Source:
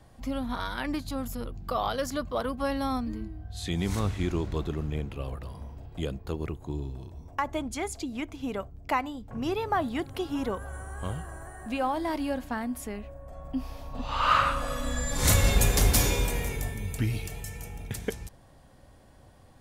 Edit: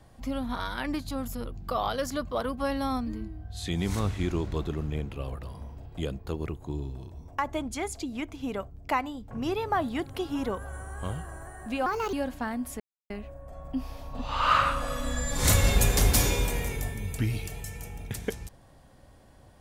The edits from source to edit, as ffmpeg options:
-filter_complex "[0:a]asplit=4[a][b][c][d];[a]atrim=end=11.864[e];[b]atrim=start=11.86:end=12.23,asetpts=PTS-STARTPTS,asetrate=60417,aresample=44100,atrim=end_sample=11910,asetpts=PTS-STARTPTS[f];[c]atrim=start=12.226:end=12.9,asetpts=PTS-STARTPTS,afade=t=out:st=0.67:d=0.004:c=hsin,apad=pad_dur=0.3[g];[d]atrim=start=12.9,asetpts=PTS-STARTPTS,afade=t=in:d=0.004:c=hsin[h];[e][f]acrossfade=d=0.004:c1=hsin:c2=hsin[i];[g][h]concat=n=2:v=0:a=1[j];[i][j]acrossfade=d=0.004:c1=hsin:c2=hsin"

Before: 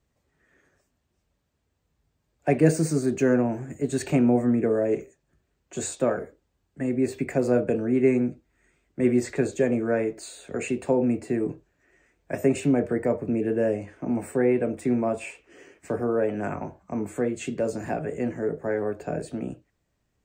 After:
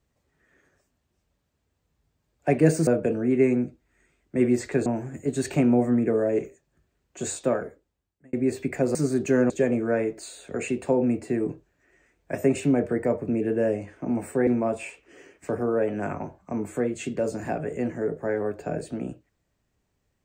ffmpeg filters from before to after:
-filter_complex "[0:a]asplit=7[a][b][c][d][e][f][g];[a]atrim=end=2.872[h];[b]atrim=start=7.508:end=9.502[i];[c]atrim=start=3.418:end=6.89,asetpts=PTS-STARTPTS,afade=t=out:st=2.602:d=0.87[j];[d]atrim=start=6.89:end=7.512,asetpts=PTS-STARTPTS,afade=t=in:d=0.004:c=hsin[k];[e]atrim=start=2.868:end=3.422[l];[f]atrim=start=9.498:end=14.472[m];[g]atrim=start=14.878[n];[h][i]acrossfade=d=0.004:c1=hsin:c2=hsin[o];[j][k]concat=n=2:v=0:a=1[p];[o][p]acrossfade=d=0.004:c1=hsin:c2=hsin[q];[q][l]acrossfade=d=0.004:c1=hsin:c2=hsin[r];[r][m]acrossfade=d=0.004:c1=hsin:c2=hsin[s];[s][n]acrossfade=d=0.004:c1=hsin:c2=hsin"

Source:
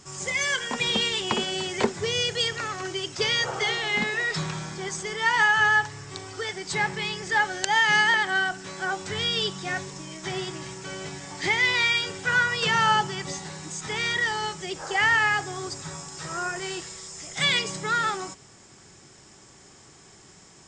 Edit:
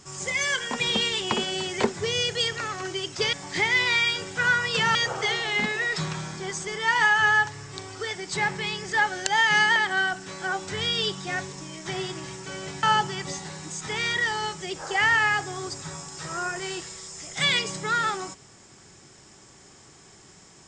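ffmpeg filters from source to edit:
-filter_complex "[0:a]asplit=4[a][b][c][d];[a]atrim=end=3.332[e];[b]atrim=start=11.208:end=12.832[f];[c]atrim=start=3.328:end=11.212[g];[d]atrim=start=12.828[h];[e][f]acrossfade=d=0.004:c1=hsin:c2=hsin[i];[i][g]acrossfade=d=0.004:c1=hsin:c2=hsin[j];[j][h]acrossfade=d=0.004:c1=hsin:c2=hsin"

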